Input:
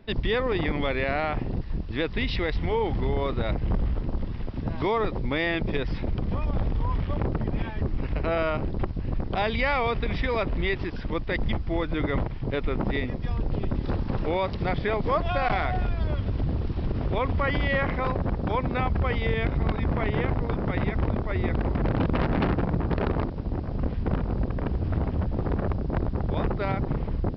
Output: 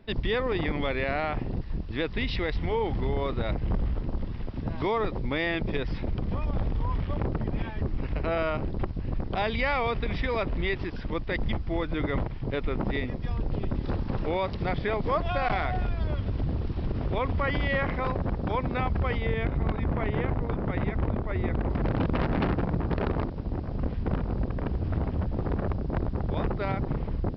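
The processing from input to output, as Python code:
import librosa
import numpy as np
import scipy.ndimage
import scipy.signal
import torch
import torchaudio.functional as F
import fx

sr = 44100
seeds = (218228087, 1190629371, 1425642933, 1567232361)

y = fx.lowpass(x, sr, hz=2800.0, slope=6, at=(19.17, 21.7))
y = y * librosa.db_to_amplitude(-2.0)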